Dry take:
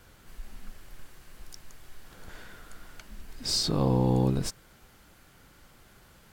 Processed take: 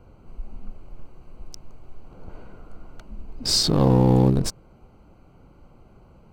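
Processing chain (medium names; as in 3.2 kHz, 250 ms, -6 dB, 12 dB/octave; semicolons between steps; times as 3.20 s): local Wiener filter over 25 samples; trim +7.5 dB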